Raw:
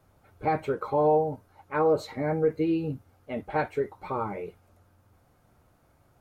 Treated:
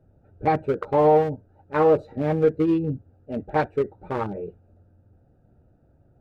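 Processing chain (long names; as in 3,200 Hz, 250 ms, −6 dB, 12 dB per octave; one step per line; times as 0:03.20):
adaptive Wiener filter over 41 samples
level +6 dB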